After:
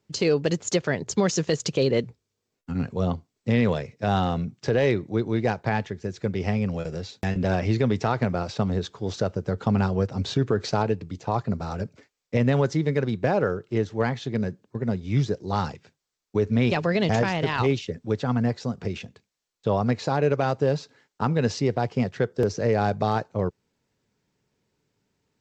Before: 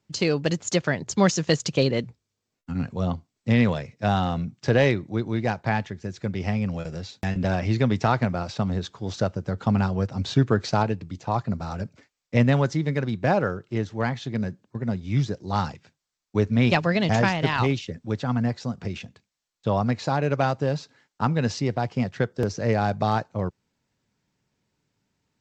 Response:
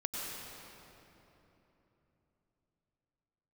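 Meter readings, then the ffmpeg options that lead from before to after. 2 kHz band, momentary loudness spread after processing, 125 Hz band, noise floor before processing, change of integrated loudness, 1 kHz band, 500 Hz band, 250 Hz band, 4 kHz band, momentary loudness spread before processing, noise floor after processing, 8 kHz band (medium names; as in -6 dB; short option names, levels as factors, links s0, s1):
-2.5 dB, 8 LU, -1.5 dB, -83 dBFS, -0.5 dB, -1.5 dB, +2.0 dB, -0.5 dB, -1.5 dB, 10 LU, -81 dBFS, no reading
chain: -af "equalizer=f=430:w=2.6:g=6.5,alimiter=limit=0.251:level=0:latency=1:release=67"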